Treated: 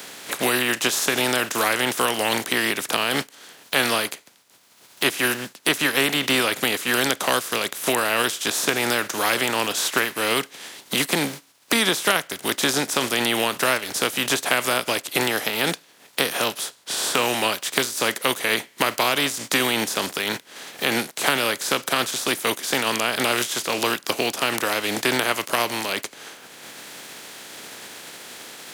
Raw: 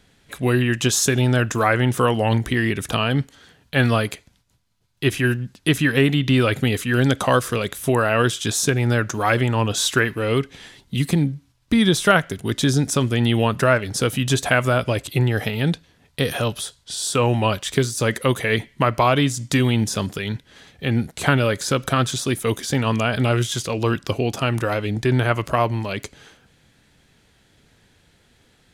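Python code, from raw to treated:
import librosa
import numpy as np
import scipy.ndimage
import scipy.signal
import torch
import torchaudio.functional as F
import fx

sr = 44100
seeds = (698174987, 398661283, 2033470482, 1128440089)

y = fx.spec_flatten(x, sr, power=0.5)
y = scipy.signal.sosfilt(scipy.signal.butter(2, 270.0, 'highpass', fs=sr, output='sos'), y)
y = fx.band_squash(y, sr, depth_pct=70)
y = F.gain(torch.from_numpy(y), -2.0).numpy()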